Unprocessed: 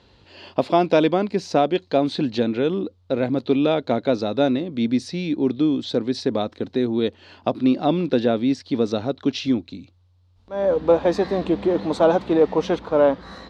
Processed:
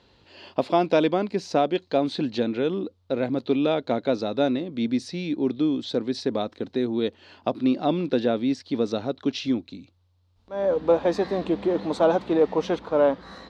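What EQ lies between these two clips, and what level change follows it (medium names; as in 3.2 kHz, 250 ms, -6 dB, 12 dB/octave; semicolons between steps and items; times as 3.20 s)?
peaking EQ 72 Hz -4.5 dB 1.9 oct; -3.0 dB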